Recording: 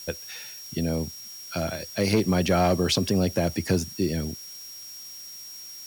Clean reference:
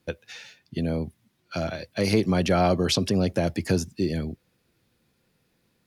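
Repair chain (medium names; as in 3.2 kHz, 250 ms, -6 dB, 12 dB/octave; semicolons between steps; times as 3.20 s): clip repair -14 dBFS; band-stop 5.6 kHz, Q 30; noise print and reduce 29 dB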